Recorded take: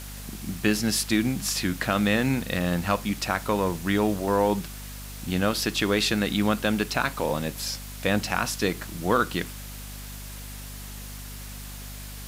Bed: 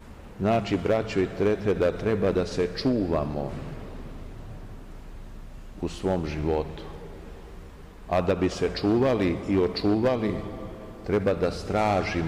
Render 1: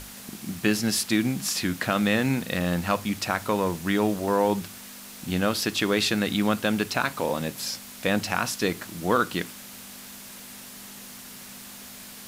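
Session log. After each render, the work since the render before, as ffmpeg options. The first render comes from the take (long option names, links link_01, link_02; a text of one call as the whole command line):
ffmpeg -i in.wav -af "bandreject=frequency=50:width_type=h:width=6,bandreject=frequency=100:width_type=h:width=6,bandreject=frequency=150:width_type=h:width=6" out.wav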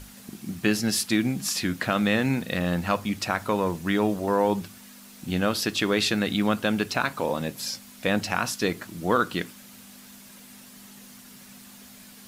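ffmpeg -i in.wav -af "afftdn=noise_reduction=7:noise_floor=-43" out.wav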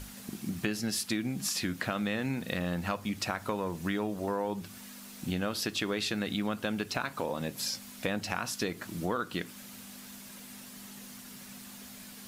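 ffmpeg -i in.wav -af "acompressor=threshold=-30dB:ratio=4" out.wav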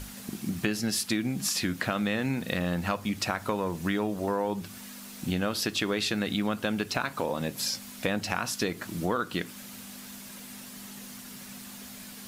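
ffmpeg -i in.wav -af "volume=3.5dB" out.wav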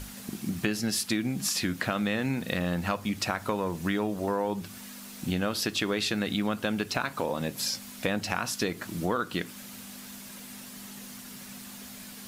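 ffmpeg -i in.wav -af anull out.wav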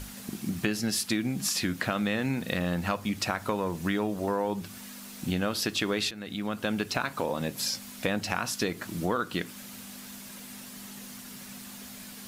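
ffmpeg -i in.wav -filter_complex "[0:a]asplit=2[link_01][link_02];[link_01]atrim=end=6.11,asetpts=PTS-STARTPTS,afade=type=out:start_time=6.106:duration=0.004:curve=hsin:silence=0.158489[link_03];[link_02]atrim=start=6.11,asetpts=PTS-STARTPTS,afade=type=in:duration=0.6:silence=0.158489[link_04];[link_03][link_04]concat=n=2:v=0:a=1" out.wav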